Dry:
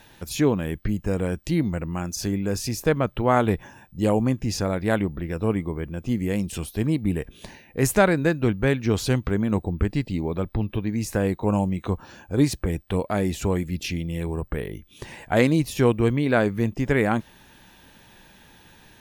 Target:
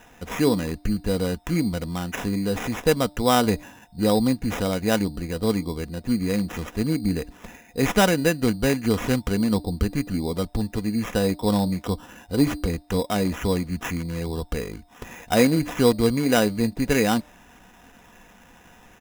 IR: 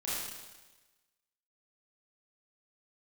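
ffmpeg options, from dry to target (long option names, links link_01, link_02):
-af "aecho=1:1:4.1:0.4,bandreject=frequency=298.5:width_type=h:width=4,bandreject=frequency=597:width_type=h:width=4,bandreject=frequency=895.5:width_type=h:width=4,acrusher=samples=10:mix=1:aa=0.000001"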